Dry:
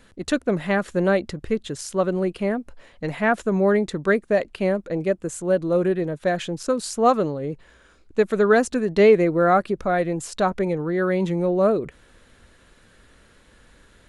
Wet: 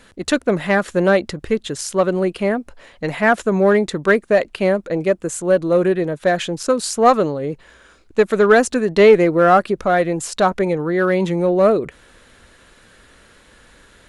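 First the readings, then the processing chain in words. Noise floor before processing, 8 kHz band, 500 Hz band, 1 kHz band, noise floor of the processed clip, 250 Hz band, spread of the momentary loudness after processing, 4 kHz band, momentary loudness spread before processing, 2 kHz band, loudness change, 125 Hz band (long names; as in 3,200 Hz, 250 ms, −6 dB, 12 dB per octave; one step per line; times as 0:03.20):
−55 dBFS, +7.0 dB, +5.0 dB, +5.5 dB, −51 dBFS, +3.5 dB, 9 LU, +7.0 dB, 9 LU, +6.0 dB, +5.0 dB, +3.0 dB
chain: low-shelf EQ 320 Hz −5.5 dB
in parallel at −4.5 dB: asymmetric clip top −17.5 dBFS
on the sum: level +3 dB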